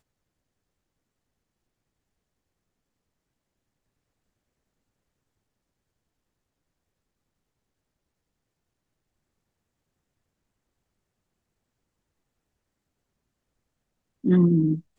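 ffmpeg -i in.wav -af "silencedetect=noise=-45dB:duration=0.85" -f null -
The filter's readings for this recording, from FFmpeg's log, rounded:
silence_start: 0.00
silence_end: 14.24 | silence_duration: 14.24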